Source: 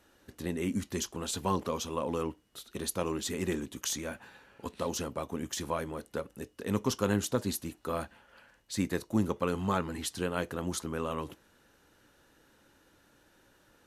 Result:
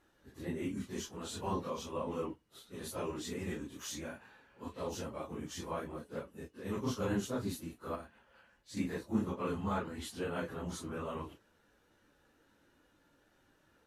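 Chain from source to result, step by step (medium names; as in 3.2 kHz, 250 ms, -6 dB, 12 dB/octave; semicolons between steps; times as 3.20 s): phase randomisation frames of 100 ms; 7.95–8.77 s: compression 6:1, threshold -38 dBFS, peak gain reduction 7.5 dB; treble shelf 4.3 kHz -6.5 dB; trim -5 dB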